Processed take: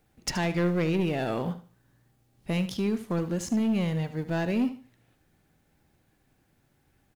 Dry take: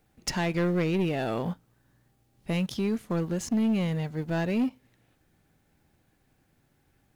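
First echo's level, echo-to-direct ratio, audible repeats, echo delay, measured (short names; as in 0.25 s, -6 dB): -13.0 dB, -12.5 dB, 2, 75 ms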